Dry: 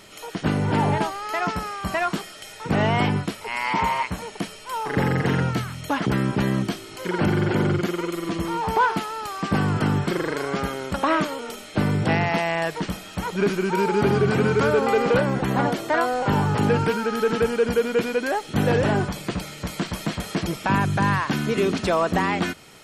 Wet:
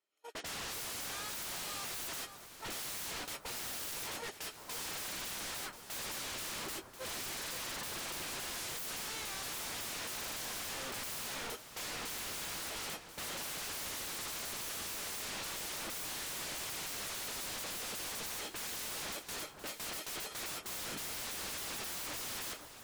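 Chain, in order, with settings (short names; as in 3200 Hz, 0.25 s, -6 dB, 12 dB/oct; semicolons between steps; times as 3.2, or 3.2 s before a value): HPF 280 Hz 24 dB/oct; gate -33 dBFS, range -37 dB; AGC gain up to 10.5 dB; wavefolder -30.5 dBFS; echo with dull and thin repeats by turns 0.517 s, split 1500 Hz, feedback 60%, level -8 dB; gain -6.5 dB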